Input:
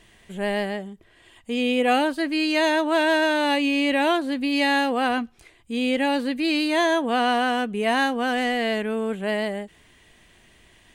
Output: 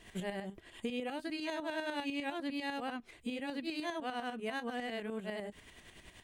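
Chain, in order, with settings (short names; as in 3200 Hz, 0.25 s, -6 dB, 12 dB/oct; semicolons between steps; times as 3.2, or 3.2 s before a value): compressor 12:1, threshold -34 dBFS, peak gain reduction 19 dB; granular stretch 0.57×, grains 0.19 s; tremolo saw up 10 Hz, depth 60%; gain +2.5 dB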